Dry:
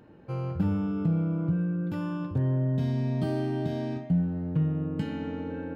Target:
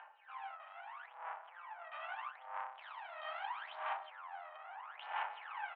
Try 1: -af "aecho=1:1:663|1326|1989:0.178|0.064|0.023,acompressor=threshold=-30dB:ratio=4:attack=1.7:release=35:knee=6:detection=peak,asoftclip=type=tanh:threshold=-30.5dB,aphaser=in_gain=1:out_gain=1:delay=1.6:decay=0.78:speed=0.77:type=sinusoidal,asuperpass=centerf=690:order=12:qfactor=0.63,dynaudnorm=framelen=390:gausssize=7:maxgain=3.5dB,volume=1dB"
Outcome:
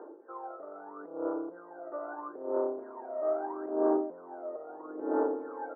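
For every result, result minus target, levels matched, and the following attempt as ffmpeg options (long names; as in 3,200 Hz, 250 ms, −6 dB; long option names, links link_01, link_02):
2,000 Hz band −17.5 dB; soft clipping: distortion −8 dB
-af "aecho=1:1:663|1326|1989:0.178|0.064|0.023,acompressor=threshold=-30dB:ratio=4:attack=1.7:release=35:knee=6:detection=peak,asoftclip=type=tanh:threshold=-30.5dB,aphaser=in_gain=1:out_gain=1:delay=1.6:decay=0.78:speed=0.77:type=sinusoidal,asuperpass=centerf=1600:order=12:qfactor=0.63,dynaudnorm=framelen=390:gausssize=7:maxgain=3.5dB,volume=1dB"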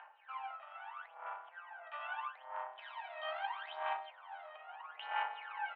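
soft clipping: distortion −8 dB
-af "aecho=1:1:663|1326|1989:0.178|0.064|0.023,acompressor=threshold=-30dB:ratio=4:attack=1.7:release=35:knee=6:detection=peak,asoftclip=type=tanh:threshold=-39.5dB,aphaser=in_gain=1:out_gain=1:delay=1.6:decay=0.78:speed=0.77:type=sinusoidal,asuperpass=centerf=1600:order=12:qfactor=0.63,dynaudnorm=framelen=390:gausssize=7:maxgain=3.5dB,volume=1dB"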